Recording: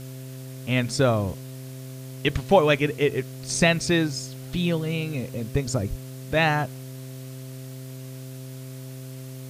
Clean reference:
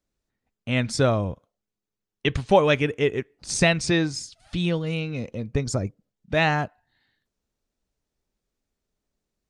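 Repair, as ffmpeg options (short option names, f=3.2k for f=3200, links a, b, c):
-filter_complex "[0:a]bandreject=f=130.6:t=h:w=4,bandreject=f=261.2:t=h:w=4,bandreject=f=391.8:t=h:w=4,bandreject=f=522.4:t=h:w=4,bandreject=f=653:t=h:w=4,asplit=3[a][b][c];[a]afade=t=out:st=5.89:d=0.02[d];[b]highpass=f=140:w=0.5412,highpass=f=140:w=1.3066,afade=t=in:st=5.89:d=0.02,afade=t=out:st=6.01:d=0.02[e];[c]afade=t=in:st=6.01:d=0.02[f];[d][e][f]amix=inputs=3:normalize=0,afwtdn=0.004"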